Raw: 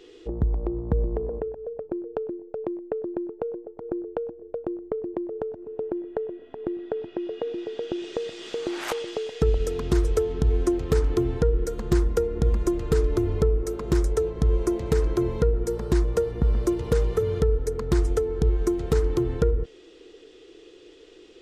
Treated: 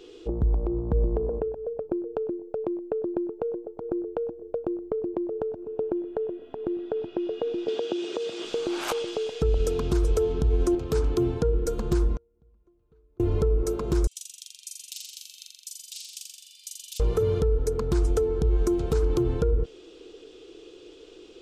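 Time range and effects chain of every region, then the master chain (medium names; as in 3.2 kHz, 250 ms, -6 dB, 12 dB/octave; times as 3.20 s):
7.68–8.45 s: high-pass 190 Hz + three bands compressed up and down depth 100%
10.75–11.66 s: high-pass 53 Hz + three bands expanded up and down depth 40%
12.16–13.20 s: inverted gate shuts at -23 dBFS, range -41 dB + Butterworth band-stop 5.1 kHz, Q 7.6 + distance through air 220 m
14.07–17.00 s: steep high-pass 2.8 kHz 48 dB/octave + flutter echo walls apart 7.3 m, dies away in 1.3 s
whole clip: peaking EQ 1.9 kHz -10.5 dB 0.27 oct; peak limiter -17 dBFS; trim +2 dB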